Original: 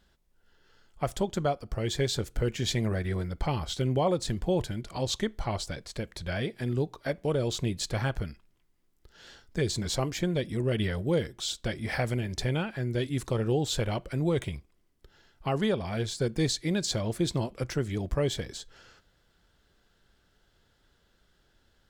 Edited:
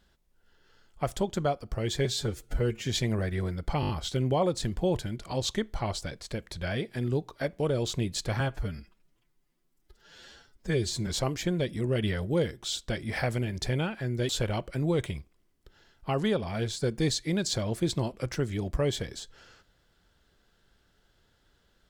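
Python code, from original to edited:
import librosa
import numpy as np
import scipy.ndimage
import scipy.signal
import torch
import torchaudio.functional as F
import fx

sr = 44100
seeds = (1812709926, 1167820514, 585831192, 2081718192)

y = fx.edit(x, sr, fx.stretch_span(start_s=2.05, length_s=0.54, factor=1.5),
    fx.stutter(start_s=3.54, slice_s=0.02, count=5),
    fx.stretch_span(start_s=8.05, length_s=1.78, factor=1.5),
    fx.cut(start_s=13.05, length_s=0.62), tone=tone)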